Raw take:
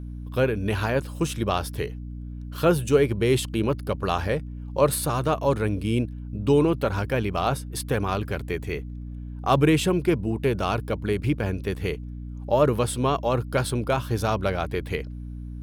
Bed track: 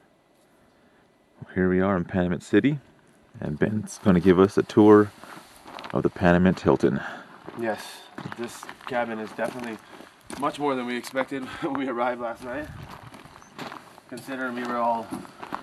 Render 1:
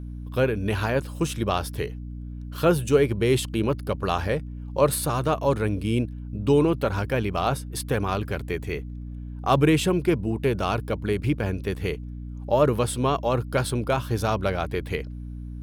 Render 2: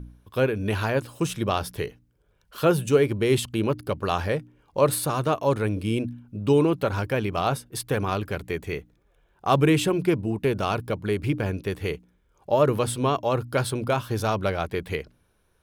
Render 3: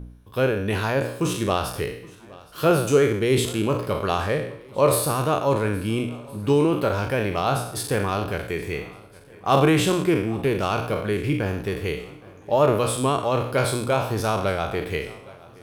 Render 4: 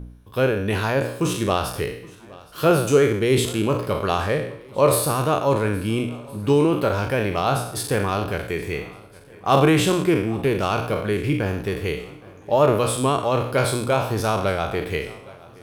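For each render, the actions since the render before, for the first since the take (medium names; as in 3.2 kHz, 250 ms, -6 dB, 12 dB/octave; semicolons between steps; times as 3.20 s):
no audible change
de-hum 60 Hz, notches 5
spectral sustain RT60 0.65 s; shuffle delay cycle 1365 ms, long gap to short 1.5:1, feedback 32%, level -22.5 dB
trim +1.5 dB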